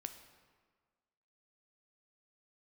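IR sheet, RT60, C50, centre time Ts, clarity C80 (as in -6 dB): 1.6 s, 10.0 dB, 17 ms, 11.5 dB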